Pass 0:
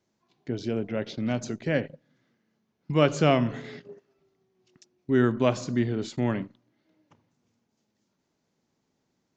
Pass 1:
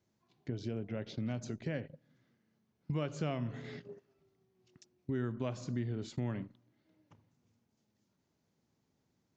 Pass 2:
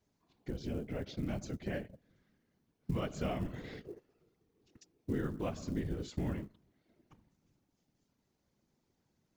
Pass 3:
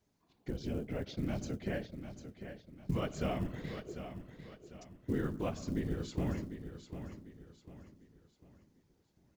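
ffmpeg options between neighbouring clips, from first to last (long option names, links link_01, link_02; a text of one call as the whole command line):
ffmpeg -i in.wav -af "acompressor=threshold=-35dB:ratio=2.5,equalizer=frequency=91:width_type=o:width=1.6:gain=8.5,volume=-5dB" out.wav
ffmpeg -i in.wav -af "afftfilt=real='hypot(re,im)*cos(2*PI*random(0))':imag='hypot(re,im)*sin(2*PI*random(1))':win_size=512:overlap=0.75,acrusher=bits=8:mode=log:mix=0:aa=0.000001,volume=6dB" out.wav
ffmpeg -i in.wav -af "aecho=1:1:748|1496|2244|2992:0.316|0.117|0.0433|0.016,volume=1dB" out.wav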